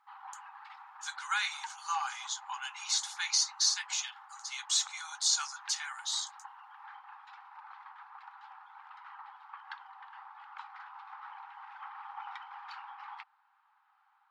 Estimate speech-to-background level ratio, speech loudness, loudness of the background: 17.0 dB, -32.0 LUFS, -49.0 LUFS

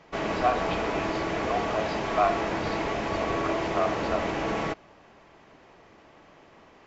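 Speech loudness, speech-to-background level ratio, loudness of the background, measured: -31.0 LUFS, -1.5 dB, -29.5 LUFS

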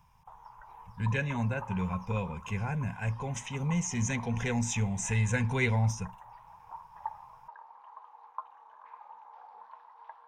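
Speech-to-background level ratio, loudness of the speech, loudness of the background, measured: 16.5 dB, -31.5 LUFS, -48.0 LUFS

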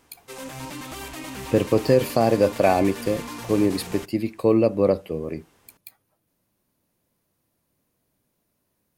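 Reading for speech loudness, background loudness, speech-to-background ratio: -22.0 LUFS, -36.0 LUFS, 14.0 dB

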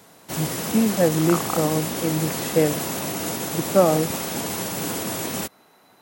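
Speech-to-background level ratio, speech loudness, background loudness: 3.5 dB, -23.0 LUFS, -26.5 LUFS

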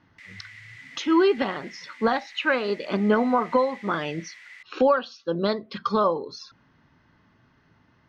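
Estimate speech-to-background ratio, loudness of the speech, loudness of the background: 19.5 dB, -24.5 LUFS, -44.0 LUFS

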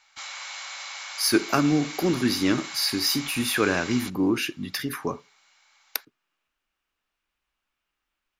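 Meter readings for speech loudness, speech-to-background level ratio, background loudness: -25.0 LUFS, 10.5 dB, -35.5 LUFS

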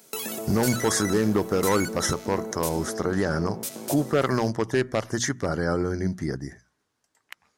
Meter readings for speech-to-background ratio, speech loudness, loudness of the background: 7.0 dB, -26.0 LUFS, -33.0 LUFS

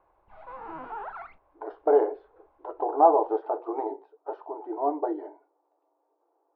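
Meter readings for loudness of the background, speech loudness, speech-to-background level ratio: -41.0 LUFS, -26.0 LUFS, 15.0 dB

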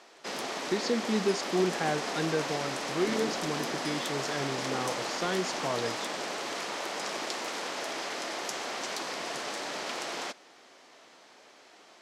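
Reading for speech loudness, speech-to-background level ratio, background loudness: -33.0 LUFS, 1.0 dB, -34.0 LUFS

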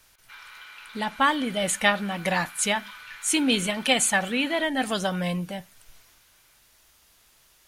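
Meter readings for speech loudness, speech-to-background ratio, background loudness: -24.5 LUFS, 19.0 dB, -43.5 LUFS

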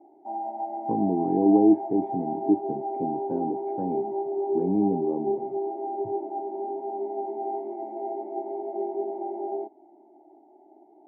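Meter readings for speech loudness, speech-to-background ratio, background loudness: -26.0 LUFS, 5.5 dB, -31.5 LUFS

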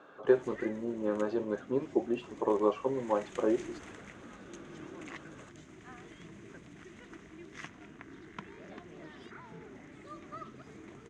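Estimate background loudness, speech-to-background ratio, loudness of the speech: -49.5 LUFS, 17.5 dB, -32.0 LUFS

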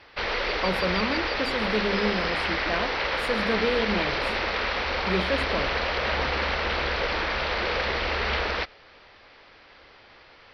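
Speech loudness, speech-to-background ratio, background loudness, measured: -30.0 LUFS, -4.0 dB, -26.0 LUFS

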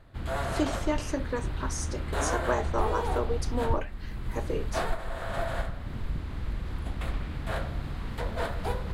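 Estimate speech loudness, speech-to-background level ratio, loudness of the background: -33.5 LUFS, 0.5 dB, -34.0 LUFS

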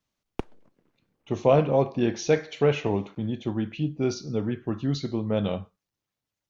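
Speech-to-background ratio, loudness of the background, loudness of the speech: 13.0 dB, -39.5 LUFS, -26.5 LUFS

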